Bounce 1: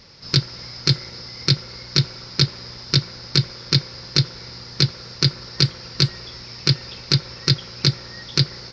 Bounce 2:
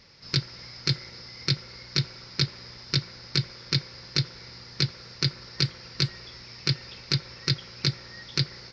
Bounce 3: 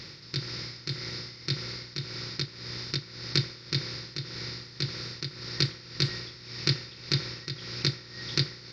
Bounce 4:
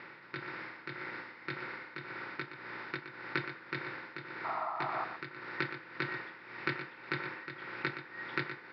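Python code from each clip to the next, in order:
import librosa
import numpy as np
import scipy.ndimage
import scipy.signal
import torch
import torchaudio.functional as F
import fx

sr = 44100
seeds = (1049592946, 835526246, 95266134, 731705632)

y1 = fx.peak_eq(x, sr, hz=2100.0, db=4.5, octaves=0.86)
y1 = y1 * 10.0 ** (-8.0 / 20.0)
y2 = fx.bin_compress(y1, sr, power=0.6)
y2 = y2 * (1.0 - 0.72 / 2.0 + 0.72 / 2.0 * np.cos(2.0 * np.pi * 1.8 * (np.arange(len(y2)) / sr)))
y2 = fx.small_body(y2, sr, hz=(330.0, 1900.0, 3700.0), ring_ms=45, db=6)
y2 = y2 * 10.0 ** (-2.0 / 20.0)
y3 = fx.cabinet(y2, sr, low_hz=400.0, low_slope=12, high_hz=2200.0, hz=(470.0, 900.0, 1500.0), db=(-6, 6, 4))
y3 = fx.spec_paint(y3, sr, seeds[0], shape='noise', start_s=4.44, length_s=0.61, low_hz=620.0, high_hz=1400.0, level_db=-39.0)
y3 = y3 + 10.0 ** (-10.5 / 20.0) * np.pad(y3, (int(120 * sr / 1000.0), 0))[:len(y3)]
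y3 = y3 * 10.0 ** (2.0 / 20.0)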